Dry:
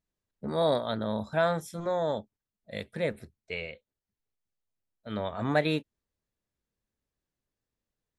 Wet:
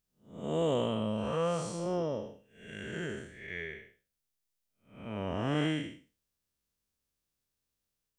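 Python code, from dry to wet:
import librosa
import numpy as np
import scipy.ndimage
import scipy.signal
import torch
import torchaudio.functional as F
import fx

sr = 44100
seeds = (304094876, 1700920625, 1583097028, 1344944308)

y = fx.spec_blur(x, sr, span_ms=260.0)
y = fx.high_shelf(y, sr, hz=4000.0, db=10.5)
y = fx.formant_shift(y, sr, semitones=-4)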